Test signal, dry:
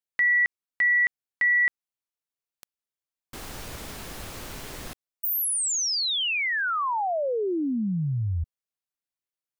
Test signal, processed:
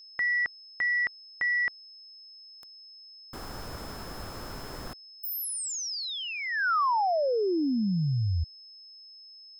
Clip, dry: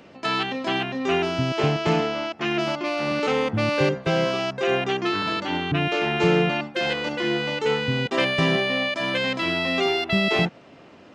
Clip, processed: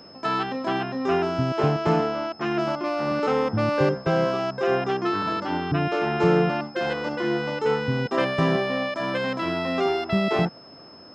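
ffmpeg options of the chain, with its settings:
-af "highshelf=f=1800:t=q:w=1.5:g=-7,aeval=exprs='val(0)+0.00447*sin(2*PI*5200*n/s)':c=same,aeval=exprs='0.398*(cos(1*acos(clip(val(0)/0.398,-1,1)))-cos(1*PI/2))+0.00251*(cos(7*acos(clip(val(0)/0.398,-1,1)))-cos(7*PI/2))':c=same"

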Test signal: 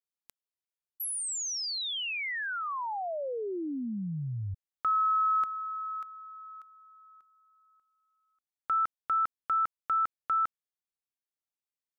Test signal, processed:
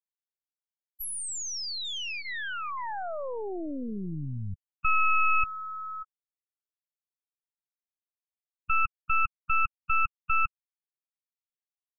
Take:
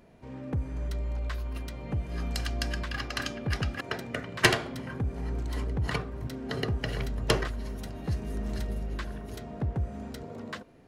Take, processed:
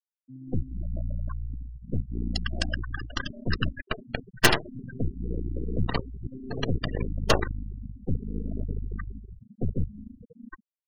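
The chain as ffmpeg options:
-af "aeval=exprs='0.447*(cos(1*acos(clip(val(0)/0.447,-1,1)))-cos(1*PI/2))+0.0891*(cos(6*acos(clip(val(0)/0.447,-1,1)))-cos(6*PI/2))+0.0141*(cos(7*acos(clip(val(0)/0.447,-1,1)))-cos(7*PI/2))+0.178*(cos(8*acos(clip(val(0)/0.447,-1,1)))-cos(8*PI/2))':c=same,bandreject=f=2200:w=12,afftfilt=real='re*gte(hypot(re,im),0.0562)':imag='im*gte(hypot(re,im),0.0562)':win_size=1024:overlap=0.75,volume=1.19"

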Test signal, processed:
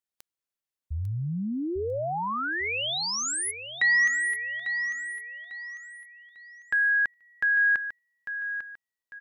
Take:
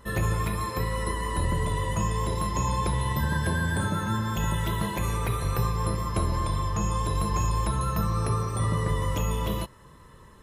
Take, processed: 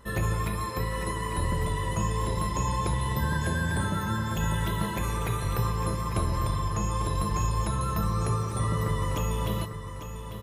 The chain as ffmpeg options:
-af "aecho=1:1:848|1696|2544|3392:0.316|0.108|0.0366|0.0124,volume=0.841"

